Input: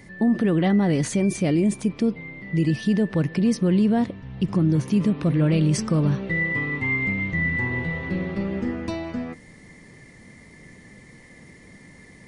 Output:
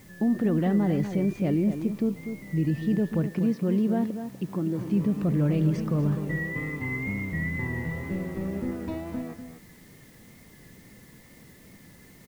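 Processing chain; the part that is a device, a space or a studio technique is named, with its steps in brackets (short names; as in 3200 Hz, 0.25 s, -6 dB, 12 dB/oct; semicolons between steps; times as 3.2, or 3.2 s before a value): 3.25–4.79 HPF 120 Hz -> 250 Hz 12 dB/oct; cassette deck with a dirty head (tape spacing loss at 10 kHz 29 dB; wow and flutter; white noise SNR 30 dB); outdoor echo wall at 42 m, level -9 dB; gain -3.5 dB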